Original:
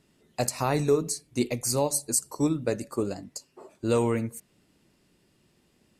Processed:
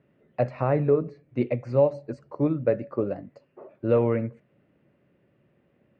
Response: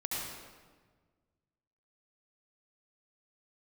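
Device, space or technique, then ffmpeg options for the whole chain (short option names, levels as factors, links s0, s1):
bass cabinet: -filter_complex "[0:a]asettb=1/sr,asplit=3[s0][s1][s2];[s0]atrim=end=0.644[s3];[s1]atrim=start=0.64:end=1.29,asetpts=PTS-STARTPTS,afade=t=in:d=0.004:c=qsin,afade=t=out:st=0.646:d=0.004:c=qsin,equalizer=f=11000:w=0.34:g=-12[s4];[s2]atrim=start=1.286[s5];[s3][s4]acrossfade=d=0.004:c1=hsin:c2=qsin[s6];[s6][s5]acrossfade=d=0.004:c1=qsin:c2=hsin,highpass=75,equalizer=f=130:t=q:w=4:g=6,equalizer=f=560:t=q:w=4:g=9,equalizer=f=920:t=q:w=4:g=-4,lowpass=f=2300:w=0.5412,lowpass=f=2300:w=1.3066"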